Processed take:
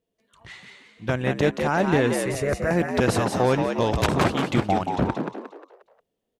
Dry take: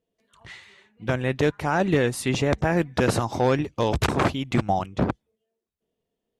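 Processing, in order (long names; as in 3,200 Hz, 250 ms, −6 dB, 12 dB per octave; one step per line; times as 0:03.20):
0:02.16–0:02.71: phaser with its sweep stopped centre 860 Hz, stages 6
echo with shifted repeats 178 ms, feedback 40%, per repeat +74 Hz, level −5.5 dB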